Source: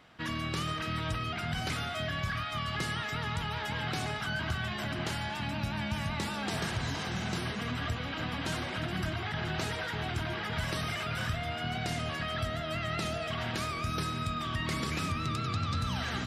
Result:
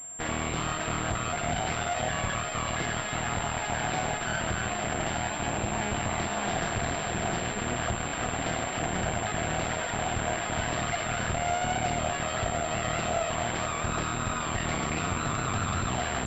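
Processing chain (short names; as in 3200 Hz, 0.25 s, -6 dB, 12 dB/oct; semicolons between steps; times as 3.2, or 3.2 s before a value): added harmonics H 6 -8 dB, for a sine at -21.5 dBFS; bell 700 Hz +10.5 dB 0.26 oct; pulse-width modulation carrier 7400 Hz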